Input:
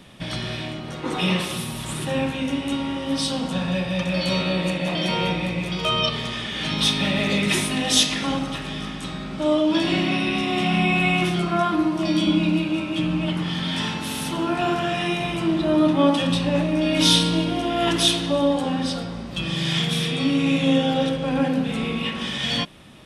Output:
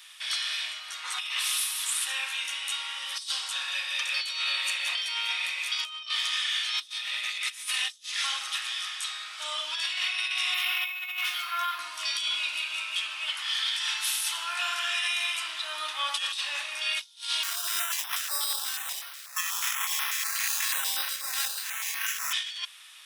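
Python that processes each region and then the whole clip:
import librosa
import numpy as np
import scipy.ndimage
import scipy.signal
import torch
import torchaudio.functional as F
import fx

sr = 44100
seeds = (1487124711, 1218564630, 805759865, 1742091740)

y = fx.chain(x, sr, fx.steep_highpass(hz=720.0, slope=48),
    fx.air_absorb(metres=54.0),
    fx.resample_linear(factor=3), at=(10.54, 11.79))
y = fx.chain(y, sr, fx.low_shelf(hz=230.0, db=-6.5),
    fx.sample_hold(seeds[0], rate_hz=4400.0, jitter_pct=0),
    fx.filter_held_notch(hz=8.2, low_hz=390.0, high_hz=7300.0), at=(17.43, 22.33))
y = scipy.signal.sosfilt(scipy.signal.butter(4, 1200.0, 'highpass', fs=sr, output='sos'), y)
y = fx.high_shelf(y, sr, hz=3200.0, db=11.0)
y = fx.over_compress(y, sr, threshold_db=-25.0, ratio=-0.5)
y = y * librosa.db_to_amplitude(-5.0)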